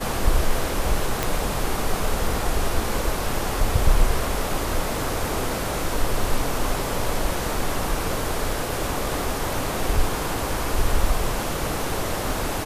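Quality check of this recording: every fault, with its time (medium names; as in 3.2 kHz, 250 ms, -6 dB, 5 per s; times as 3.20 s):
1.23 s: pop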